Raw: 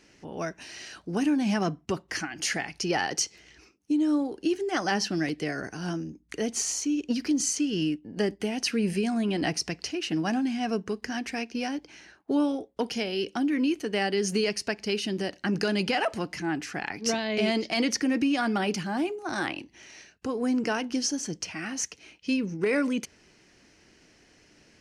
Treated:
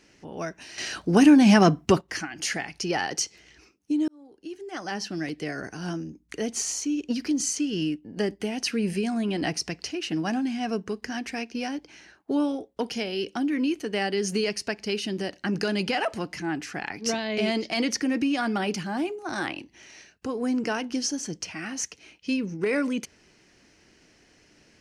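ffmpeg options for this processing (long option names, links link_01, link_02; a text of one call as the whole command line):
ffmpeg -i in.wav -filter_complex "[0:a]asplit=4[link_01][link_02][link_03][link_04];[link_01]atrim=end=0.782[link_05];[link_02]atrim=start=0.778:end=2.012,asetpts=PTS-STARTPTS,volume=10dB[link_06];[link_03]atrim=start=2.008:end=4.08,asetpts=PTS-STARTPTS,afade=type=out:start_time=2.068:duration=0.004:curve=hsin[link_07];[link_04]atrim=start=4.08,asetpts=PTS-STARTPTS,afade=type=in:duration=1.6[link_08];[link_05][link_06]acrossfade=duration=0.004:curve1=hsin:curve2=hsin[link_09];[link_07][link_08]concat=n=2:v=0:a=1[link_10];[link_09][link_10]acrossfade=duration=0.004:curve1=hsin:curve2=hsin" out.wav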